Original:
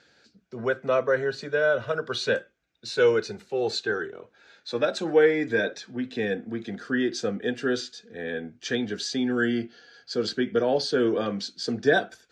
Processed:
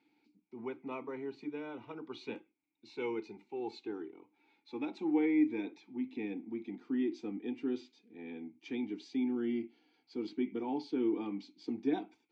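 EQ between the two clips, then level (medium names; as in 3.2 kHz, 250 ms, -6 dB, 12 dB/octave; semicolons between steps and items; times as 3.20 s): vowel filter u; +2.5 dB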